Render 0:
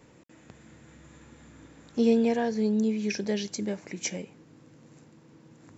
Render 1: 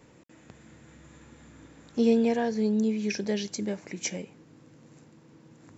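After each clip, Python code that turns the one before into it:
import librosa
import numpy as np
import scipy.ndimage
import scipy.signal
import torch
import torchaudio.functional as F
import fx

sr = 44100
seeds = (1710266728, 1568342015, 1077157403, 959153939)

y = x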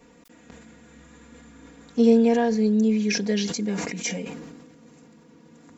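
y = x + 0.9 * np.pad(x, (int(4.2 * sr / 1000.0), 0))[:len(x)]
y = fx.sustainer(y, sr, db_per_s=37.0)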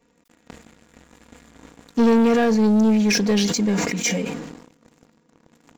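y = fx.leveller(x, sr, passes=3)
y = y * 10.0 ** (-4.0 / 20.0)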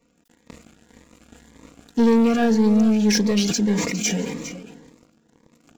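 y = x + 10.0 ** (-13.0 / 20.0) * np.pad(x, (int(406 * sr / 1000.0), 0))[:len(x)]
y = fx.notch_cascade(y, sr, direction='rising', hz=1.8)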